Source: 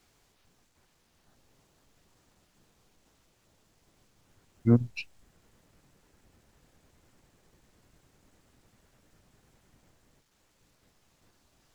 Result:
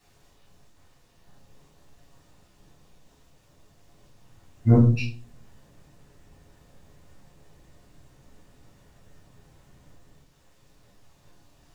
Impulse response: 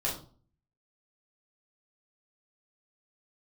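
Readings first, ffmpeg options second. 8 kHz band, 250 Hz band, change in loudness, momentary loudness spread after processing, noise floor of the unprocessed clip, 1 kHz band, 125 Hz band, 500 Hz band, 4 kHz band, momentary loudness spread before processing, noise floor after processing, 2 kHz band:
n/a, +4.5 dB, +7.0 dB, 12 LU, -70 dBFS, +9.0 dB, +9.5 dB, +5.5 dB, +5.0 dB, 18 LU, -60 dBFS, +5.0 dB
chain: -filter_complex "[1:a]atrim=start_sample=2205[a];[0:a][a]afir=irnorm=-1:irlink=0"

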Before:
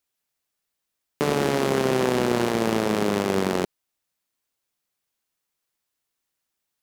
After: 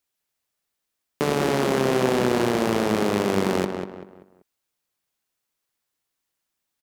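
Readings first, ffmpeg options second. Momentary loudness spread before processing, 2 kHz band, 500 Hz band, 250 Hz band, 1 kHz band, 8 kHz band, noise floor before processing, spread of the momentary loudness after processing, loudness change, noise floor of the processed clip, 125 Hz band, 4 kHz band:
5 LU, +0.5 dB, +1.0 dB, +1.0 dB, +1.0 dB, 0.0 dB, -81 dBFS, 7 LU, +1.0 dB, -81 dBFS, +1.0 dB, +0.5 dB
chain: -filter_complex "[0:a]asplit=2[a][b];[b]adelay=193,lowpass=f=2.6k:p=1,volume=-6dB,asplit=2[c][d];[d]adelay=193,lowpass=f=2.6k:p=1,volume=0.36,asplit=2[e][f];[f]adelay=193,lowpass=f=2.6k:p=1,volume=0.36,asplit=2[g][h];[h]adelay=193,lowpass=f=2.6k:p=1,volume=0.36[i];[a][c][e][g][i]amix=inputs=5:normalize=0"

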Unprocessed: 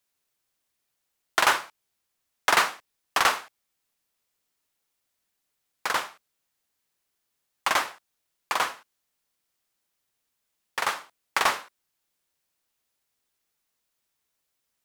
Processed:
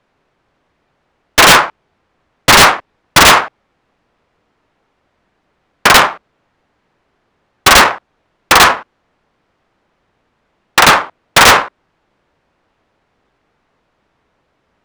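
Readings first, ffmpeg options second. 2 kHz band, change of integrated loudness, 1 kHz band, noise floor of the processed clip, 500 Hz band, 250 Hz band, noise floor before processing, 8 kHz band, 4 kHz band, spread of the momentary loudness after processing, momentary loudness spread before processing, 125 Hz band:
+18.0 dB, +18.0 dB, +17.0 dB, -65 dBFS, +19.5 dB, +24.5 dB, -80 dBFS, +20.0 dB, +20.5 dB, 10 LU, 13 LU, +30.0 dB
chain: -af "aeval=exprs='(mod(8.41*val(0)+1,2)-1)/8.41':c=same,adynamicsmooth=sensitivity=3.5:basefreq=1.5k,apsyclip=30dB,volume=-1.5dB"

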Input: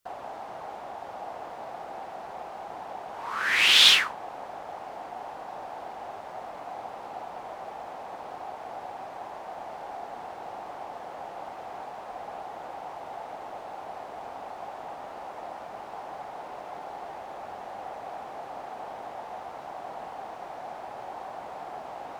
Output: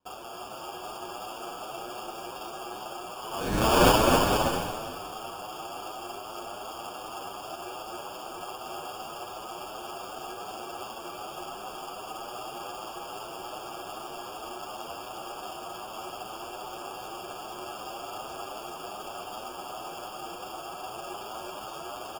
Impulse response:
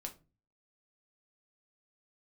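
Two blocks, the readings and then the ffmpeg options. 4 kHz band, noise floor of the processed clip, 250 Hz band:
-10.0 dB, -41 dBFS, +14.0 dB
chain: -filter_complex "[0:a]equalizer=f=360:w=7.7:g=14,asplit=2[a][b];[b]aecho=0:1:201|402|603|804|1005:0.282|0.144|0.0733|0.0374|0.0191[c];[a][c]amix=inputs=2:normalize=0,acrusher=samples=22:mix=1:aa=0.000001,asplit=2[d][e];[e]aecho=0:1:270|459|591.3|683.9|748.7:0.631|0.398|0.251|0.158|0.1[f];[d][f]amix=inputs=2:normalize=0,asplit=2[g][h];[h]adelay=8,afreqshift=2.6[i];[g][i]amix=inputs=2:normalize=1"

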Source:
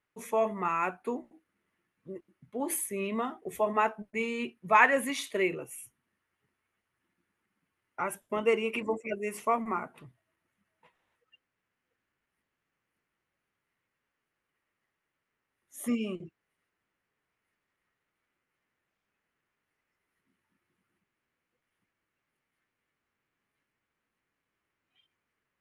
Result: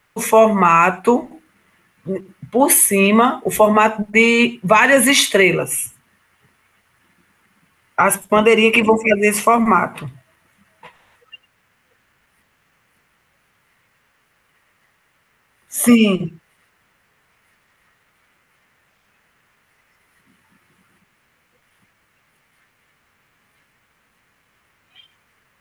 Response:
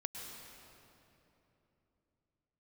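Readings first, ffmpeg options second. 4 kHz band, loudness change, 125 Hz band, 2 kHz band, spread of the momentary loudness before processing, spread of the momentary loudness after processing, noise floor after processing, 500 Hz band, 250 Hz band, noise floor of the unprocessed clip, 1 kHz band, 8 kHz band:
+22.0 dB, +16.0 dB, +21.0 dB, +15.5 dB, 17 LU, 15 LU, -63 dBFS, +16.0 dB, +19.0 dB, -85 dBFS, +14.5 dB, +22.0 dB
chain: -filter_complex "[0:a]equalizer=f=330:t=o:w=0.9:g=-7,acrossover=split=400|3000[a][b][c];[b]acompressor=threshold=-31dB:ratio=6[d];[a][d][c]amix=inputs=3:normalize=0[e];[1:a]atrim=start_sample=2205,atrim=end_sample=4410[f];[e][f]afir=irnorm=-1:irlink=0,alimiter=level_in=27dB:limit=-1dB:release=50:level=0:latency=1,volume=-1dB"

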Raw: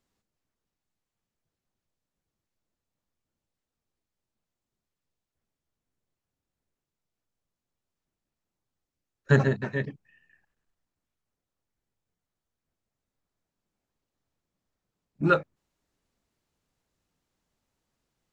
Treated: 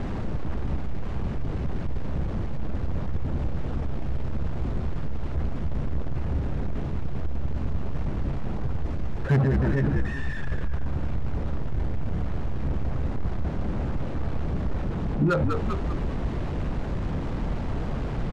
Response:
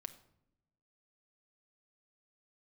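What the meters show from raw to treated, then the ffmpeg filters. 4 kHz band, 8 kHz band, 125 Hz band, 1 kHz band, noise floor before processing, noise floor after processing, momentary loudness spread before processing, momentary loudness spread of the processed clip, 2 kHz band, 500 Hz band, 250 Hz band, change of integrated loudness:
+4.5 dB, n/a, +9.0 dB, +2.0 dB, under -85 dBFS, -29 dBFS, 10 LU, 8 LU, -1.0 dB, +2.0 dB, +8.0 dB, -4.5 dB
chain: -filter_complex "[0:a]aeval=exprs='val(0)+0.5*0.0335*sgn(val(0))':c=same,acrossover=split=820[a][b];[b]adynamicsmooth=sensitivity=1.5:basefreq=1.4k[c];[a][c]amix=inputs=2:normalize=0,lowshelf=f=200:g=10.5,asoftclip=type=hard:threshold=-10.5dB,asplit=6[d][e][f][g][h][i];[e]adelay=197,afreqshift=-70,volume=-8.5dB[j];[f]adelay=394,afreqshift=-140,volume=-16.2dB[k];[g]adelay=591,afreqshift=-210,volume=-24dB[l];[h]adelay=788,afreqshift=-280,volume=-31.7dB[m];[i]adelay=985,afreqshift=-350,volume=-39.5dB[n];[d][j][k][l][m][n]amix=inputs=6:normalize=0,alimiter=limit=-19dB:level=0:latency=1:release=36,volume=3.5dB"

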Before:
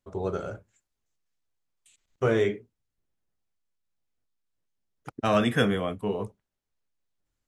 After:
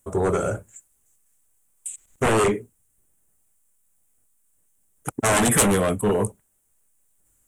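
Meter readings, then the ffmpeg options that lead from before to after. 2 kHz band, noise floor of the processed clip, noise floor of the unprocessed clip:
+6.0 dB, -67 dBFS, -85 dBFS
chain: -af "aeval=exprs='0.398*sin(PI/2*5.62*val(0)/0.398)':c=same,highshelf=f=6.4k:t=q:w=3:g=12,volume=-7.5dB"

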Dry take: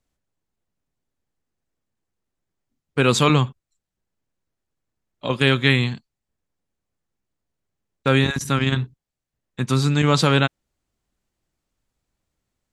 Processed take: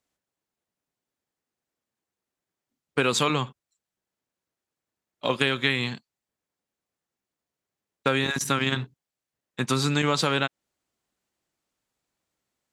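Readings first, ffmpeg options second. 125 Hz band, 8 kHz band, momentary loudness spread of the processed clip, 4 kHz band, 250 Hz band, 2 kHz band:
-10.5 dB, -1.0 dB, 10 LU, -3.0 dB, -7.0 dB, -3.5 dB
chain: -filter_complex "[0:a]asplit=2[a][b];[b]aeval=exprs='sgn(val(0))*max(abs(val(0))-0.0133,0)':c=same,volume=-8.5dB[c];[a][c]amix=inputs=2:normalize=0,highpass=f=340:p=1,acompressor=threshold=-19dB:ratio=6"

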